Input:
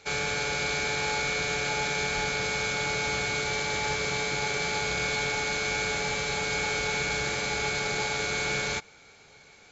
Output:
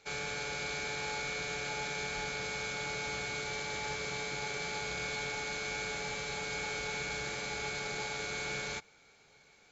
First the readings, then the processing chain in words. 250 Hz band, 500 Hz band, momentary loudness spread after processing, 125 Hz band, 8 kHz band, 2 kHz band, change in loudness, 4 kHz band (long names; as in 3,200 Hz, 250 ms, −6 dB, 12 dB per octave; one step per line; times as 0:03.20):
−8.5 dB, −8.5 dB, 1 LU, −9.0 dB, can't be measured, −8.5 dB, −8.5 dB, −8.5 dB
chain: parametric band 89 Hz −5 dB 0.4 octaves
level −8.5 dB